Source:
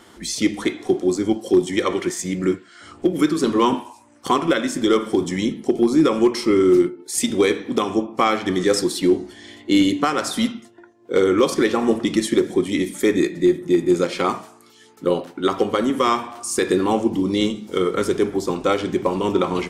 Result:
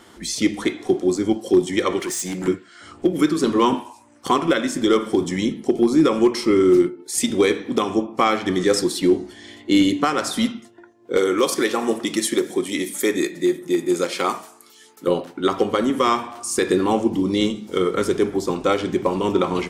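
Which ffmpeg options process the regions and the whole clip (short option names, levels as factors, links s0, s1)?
-filter_complex "[0:a]asettb=1/sr,asplit=3[s0][s1][s2];[s0]atrim=end=2.004[s3];[s1]atrim=start=2:end=2.48,asetpts=PTS-STARTPTS,afade=t=in:d=0.004:c=qsin,afade=t=out:st=0.476:d=0.004:c=qsin,highpass=170,aemphasis=mode=production:type=cd,asoftclip=type=hard:threshold=0.0708[s4];[s2]atrim=start=2.476[s5];[s3][s4]acrossfade=d=0.004:c1=hsin:c2=qsin[s6];[s6][s5]acrossfade=d=0.004:c1=qsin:c2=hsin,asettb=1/sr,asplit=3[s7][s8][s9];[s7]atrim=end=11.174[s10];[s8]atrim=start=11.17:end=15.08,asetpts=PTS-STARTPTS,afade=t=in:d=0.004:c=qsin,afade=t=out:st=3.906:d=0.004:c=qsin,highpass=f=360:p=1,highshelf=f=8600:g=11.5[s11];[s9]atrim=start=15.076[s12];[s10][s11]acrossfade=d=0.004:c1=hsin:c2=qsin[s13];[s13][s12]acrossfade=d=0.004:c1=qsin:c2=hsin"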